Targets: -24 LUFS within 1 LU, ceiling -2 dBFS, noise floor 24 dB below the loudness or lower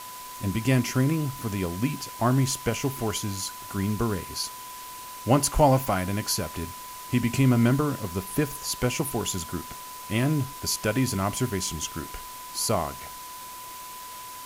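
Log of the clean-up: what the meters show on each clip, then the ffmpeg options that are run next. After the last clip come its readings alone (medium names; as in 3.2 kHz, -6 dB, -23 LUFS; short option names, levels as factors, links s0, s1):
steady tone 1 kHz; tone level -40 dBFS; noise floor -40 dBFS; noise floor target -51 dBFS; loudness -26.5 LUFS; peak level -7.0 dBFS; loudness target -24.0 LUFS
-> -af "bandreject=f=1000:w=30"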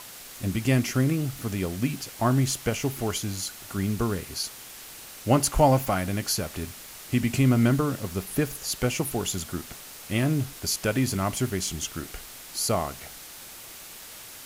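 steady tone not found; noise floor -44 dBFS; noise floor target -51 dBFS
-> -af "afftdn=nr=7:nf=-44"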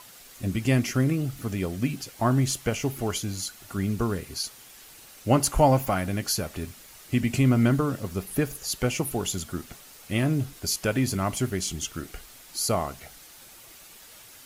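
noise floor -49 dBFS; noise floor target -51 dBFS
-> -af "afftdn=nr=6:nf=-49"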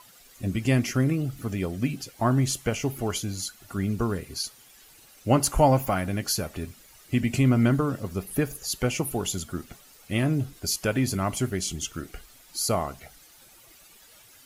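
noise floor -54 dBFS; loudness -26.5 LUFS; peak level -7.5 dBFS; loudness target -24.0 LUFS
-> -af "volume=1.33"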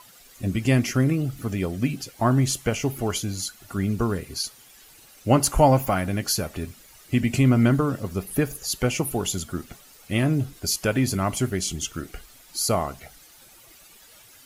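loudness -24.5 LUFS; peak level -5.0 dBFS; noise floor -51 dBFS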